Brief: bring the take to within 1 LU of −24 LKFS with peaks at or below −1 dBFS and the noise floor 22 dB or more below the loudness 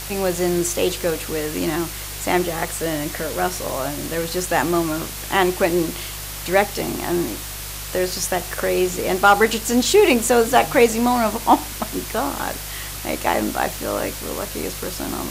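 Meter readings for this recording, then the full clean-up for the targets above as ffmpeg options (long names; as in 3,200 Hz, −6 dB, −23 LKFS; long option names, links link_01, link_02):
mains hum 50 Hz; hum harmonics up to 150 Hz; level of the hum −34 dBFS; background noise floor −31 dBFS; target noise floor −43 dBFS; integrated loudness −21.0 LKFS; sample peak −2.5 dBFS; target loudness −24.0 LKFS
→ -af "bandreject=frequency=50:width_type=h:width=4,bandreject=frequency=100:width_type=h:width=4,bandreject=frequency=150:width_type=h:width=4"
-af "afftdn=noise_reduction=12:noise_floor=-31"
-af "volume=-3dB"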